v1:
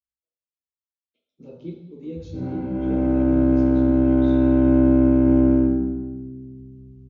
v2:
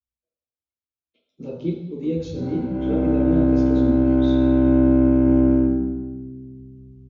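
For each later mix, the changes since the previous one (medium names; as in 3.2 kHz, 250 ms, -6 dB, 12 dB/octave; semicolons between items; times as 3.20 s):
speech +9.5 dB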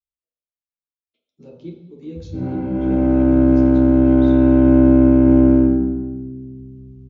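speech: send -9.5 dB; background +4.5 dB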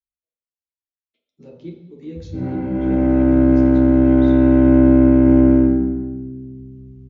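master: add peaking EQ 1.9 kHz +10.5 dB 0.26 oct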